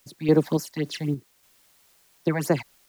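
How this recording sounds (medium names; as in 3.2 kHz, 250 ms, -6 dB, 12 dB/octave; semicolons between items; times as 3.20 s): phasing stages 8, 3.7 Hz, lowest notch 360–3500 Hz; a quantiser's noise floor 10-bit, dither triangular; random-step tremolo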